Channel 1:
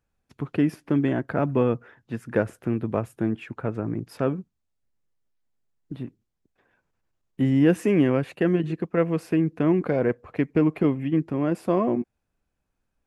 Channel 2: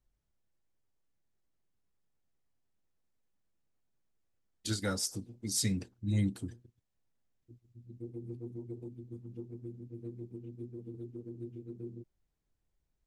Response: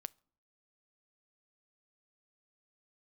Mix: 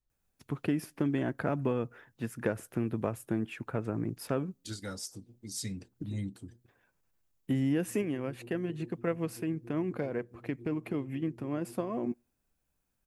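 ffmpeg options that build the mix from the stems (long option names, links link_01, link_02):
-filter_complex "[0:a]aemphasis=mode=production:type=50kf,acompressor=threshold=-21dB:ratio=6,adelay=100,volume=-6dB,asplit=2[link_01][link_02];[link_02]volume=-9.5dB[link_03];[1:a]volume=-6.5dB,asplit=2[link_04][link_05];[link_05]apad=whole_len=580719[link_06];[link_01][link_06]sidechaincompress=threshold=-53dB:ratio=8:attack=16:release=164[link_07];[2:a]atrim=start_sample=2205[link_08];[link_03][link_08]afir=irnorm=-1:irlink=0[link_09];[link_07][link_04][link_09]amix=inputs=3:normalize=0"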